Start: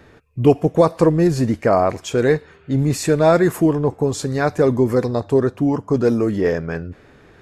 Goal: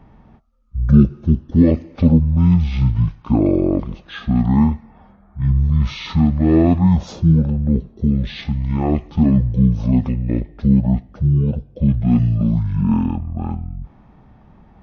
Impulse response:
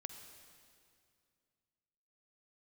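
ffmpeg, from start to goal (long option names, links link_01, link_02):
-af "asetrate=22050,aresample=44100,bass=frequency=250:gain=5,treble=frequency=4000:gain=-6,volume=-2.5dB"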